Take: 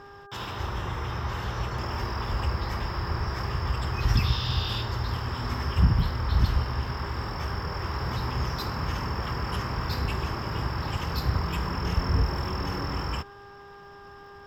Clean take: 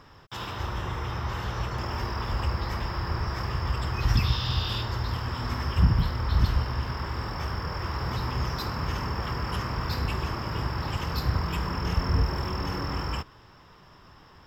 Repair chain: de-click; de-hum 401.7 Hz, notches 4

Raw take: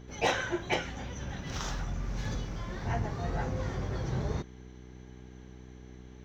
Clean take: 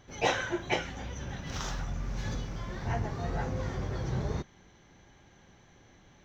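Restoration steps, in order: clip repair -18.5 dBFS; de-hum 62.6 Hz, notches 7; interpolate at 2.25, 3.2 ms

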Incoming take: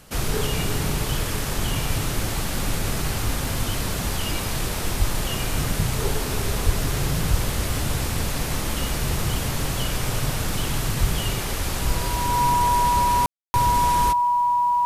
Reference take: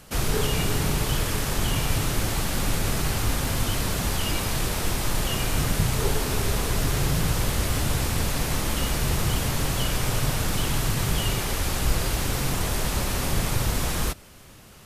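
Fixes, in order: notch 970 Hz, Q 30; de-plosive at 4.98/6.65/7.3/11; room tone fill 13.26–13.54

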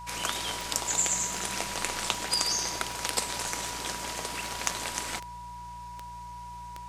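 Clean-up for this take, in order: clip repair -6.5 dBFS; de-click; de-hum 57.7 Hz, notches 3; notch 970 Hz, Q 30

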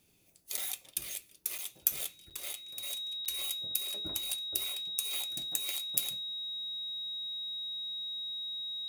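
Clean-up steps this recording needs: notch 3800 Hz, Q 30; interpolate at 0.57/1.58/2.3/3.25, 7.3 ms

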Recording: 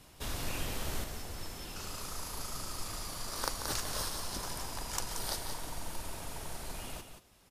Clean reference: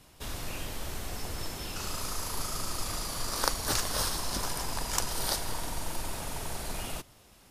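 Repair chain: clip repair -14.5 dBFS; inverse comb 0.178 s -8 dB; gain correction +6.5 dB, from 1.04

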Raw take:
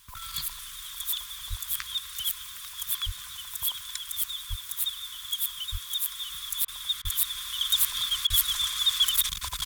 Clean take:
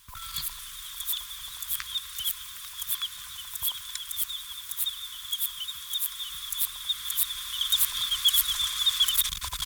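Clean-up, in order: de-plosive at 1.49/3.05/4.49/5.71/7.03/8.29; interpolate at 6.65/7.02/8.27, 29 ms

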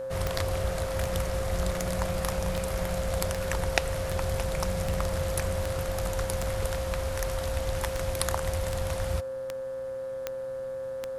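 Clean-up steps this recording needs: de-click; de-hum 125.7 Hz, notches 14; notch 530 Hz, Q 30

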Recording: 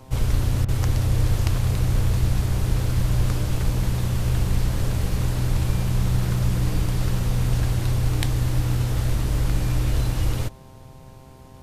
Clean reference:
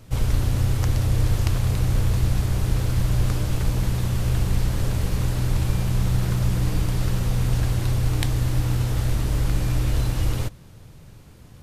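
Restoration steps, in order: de-hum 131.3 Hz, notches 8; interpolate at 0.65, 33 ms

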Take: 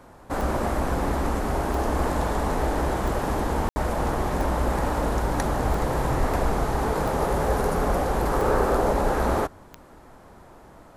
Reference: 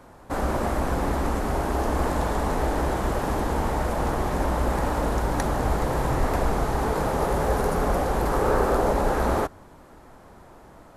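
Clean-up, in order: de-click; room tone fill 3.69–3.76

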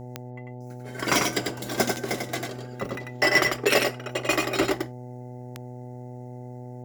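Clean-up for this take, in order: de-click; de-hum 123.9 Hz, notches 7; inverse comb 95 ms -4 dB

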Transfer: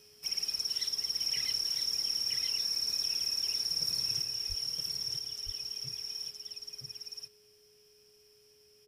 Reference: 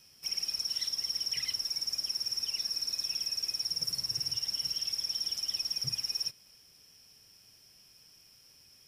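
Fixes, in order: notch 420 Hz, Q 30; 4.48–4.6 HPF 140 Hz 24 dB/oct; inverse comb 0.969 s -3.5 dB; 4.22 gain correction +7 dB

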